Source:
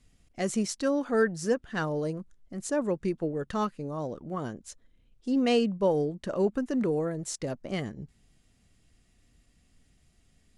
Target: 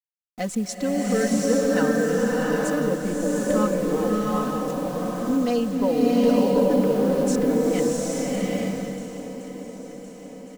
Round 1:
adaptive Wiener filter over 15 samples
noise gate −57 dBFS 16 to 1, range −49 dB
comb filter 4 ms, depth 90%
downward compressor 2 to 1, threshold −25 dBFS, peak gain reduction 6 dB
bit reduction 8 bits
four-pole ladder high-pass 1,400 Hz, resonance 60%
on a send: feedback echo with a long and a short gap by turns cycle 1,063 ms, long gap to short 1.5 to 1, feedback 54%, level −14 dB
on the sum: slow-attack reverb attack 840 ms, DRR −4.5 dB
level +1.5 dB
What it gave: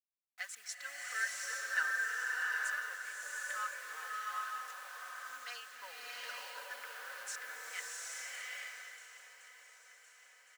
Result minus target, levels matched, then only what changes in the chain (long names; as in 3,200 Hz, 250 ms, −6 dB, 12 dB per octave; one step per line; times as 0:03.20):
1,000 Hz band +3.5 dB
remove: four-pole ladder high-pass 1,400 Hz, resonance 60%